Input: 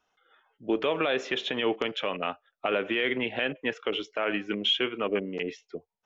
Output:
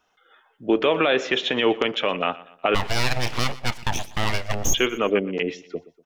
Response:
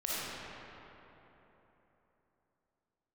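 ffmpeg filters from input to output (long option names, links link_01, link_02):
-filter_complex "[0:a]asplit=3[link_01][link_02][link_03];[link_01]afade=type=out:start_time=2.74:duration=0.02[link_04];[link_02]aeval=exprs='abs(val(0))':channel_layout=same,afade=type=in:start_time=2.74:duration=0.02,afade=type=out:start_time=4.73:duration=0.02[link_05];[link_03]afade=type=in:start_time=4.73:duration=0.02[link_06];[link_04][link_05][link_06]amix=inputs=3:normalize=0,aecho=1:1:121|242|363:0.112|0.046|0.0189,volume=7dB"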